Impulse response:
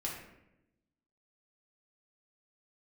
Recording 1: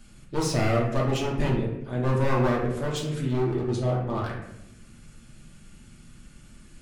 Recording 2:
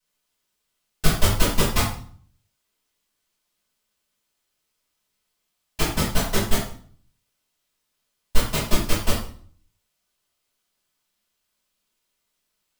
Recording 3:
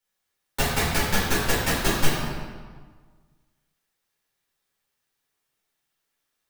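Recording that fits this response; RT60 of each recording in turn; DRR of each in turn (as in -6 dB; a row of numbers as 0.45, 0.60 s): 1; 0.90, 0.50, 1.6 s; -3.5, -12.0, -8.5 dB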